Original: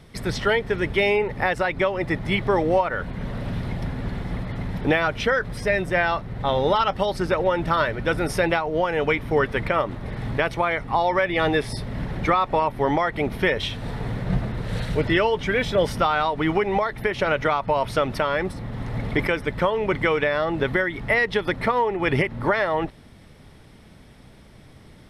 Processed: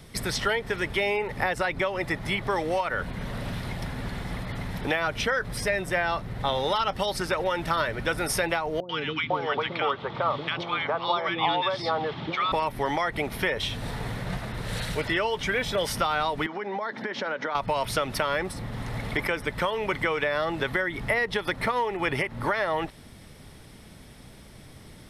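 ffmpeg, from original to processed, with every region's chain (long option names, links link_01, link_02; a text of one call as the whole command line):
ffmpeg -i in.wav -filter_complex "[0:a]asettb=1/sr,asplit=3[link_01][link_02][link_03];[link_01]atrim=end=8.804[link_04];[link_02]atrim=start=8.8:end=12.52,asetpts=PTS-STARTPTS,afade=type=in:duration=0.004:curve=qsin,afade=type=out:start_time=3.716:duration=0.004:curve=qsin,highpass=frequency=110:width=0.5412,highpass=frequency=110:width=1.3066,equalizer=frequency=110:width_type=q:width=4:gain=-7,equalizer=frequency=200:width_type=q:width=4:gain=-7,equalizer=frequency=860:width_type=q:width=4:gain=5,equalizer=frequency=1200:width_type=q:width=4:gain=7,equalizer=frequency=1800:width_type=q:width=4:gain=-5,equalizer=frequency=3300:width_type=q:width=4:gain=8,lowpass=frequency=4600:width=0.5412,lowpass=frequency=4600:width=1.3066,acrossover=split=380|1400[link_05][link_06][link_07];[link_07]adelay=90[link_08];[link_06]adelay=500[link_09];[link_05][link_09][link_08]amix=inputs=3:normalize=0,atrim=end_sample=164052[link_10];[link_03]atrim=start=12.516[link_11];[link_04][link_10]acrossfade=duration=0.004:curve1=hsin:curve2=qsin[link_12];[link_12][link_11]acrossfade=duration=0.004:curve1=qsin:curve2=hsin,asettb=1/sr,asplit=3[link_13][link_14][link_15];[link_13]atrim=end=16.464[link_16];[link_14]atrim=start=16.46:end=17.55,asetpts=PTS-STARTPTS,afade=type=in:duration=0.004:curve=qsin,afade=type=out:start_time=1.086:duration=0.004:curve=qsin,acompressor=threshold=-29dB:ratio=6:attack=3.2:release=140:knee=1:detection=peak,highpass=frequency=190:width=0.5412,highpass=frequency=190:width=1.3066,equalizer=frequency=230:width_type=q:width=4:gain=7,equalizer=frequency=530:width_type=q:width=4:gain=4,equalizer=frequency=930:width_type=q:width=4:gain=5,equalizer=frequency=1600:width_type=q:width=4:gain=6,equalizer=frequency=2600:width_type=q:width=4:gain=-6,lowpass=frequency=5700:width=0.5412,lowpass=frequency=5700:width=1.3066[link_17];[link_15]atrim=start=17.546[link_18];[link_16][link_17]acrossfade=duration=0.004:curve1=hsin:curve2=qsin[link_19];[link_19][link_18]acrossfade=duration=0.004:curve1=qsin:curve2=hsin,acrossover=split=660|1400[link_20][link_21][link_22];[link_20]acompressor=threshold=-31dB:ratio=4[link_23];[link_21]acompressor=threshold=-29dB:ratio=4[link_24];[link_22]acompressor=threshold=-31dB:ratio=4[link_25];[link_23][link_24][link_25]amix=inputs=3:normalize=0,highshelf=frequency=5200:gain=10" out.wav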